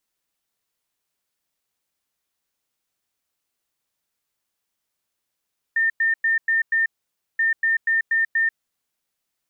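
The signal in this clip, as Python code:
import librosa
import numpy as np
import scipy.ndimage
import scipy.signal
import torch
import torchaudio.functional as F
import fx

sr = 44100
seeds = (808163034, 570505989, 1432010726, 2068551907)

y = fx.beep_pattern(sr, wave='sine', hz=1810.0, on_s=0.14, off_s=0.1, beeps=5, pause_s=0.53, groups=2, level_db=-16.5)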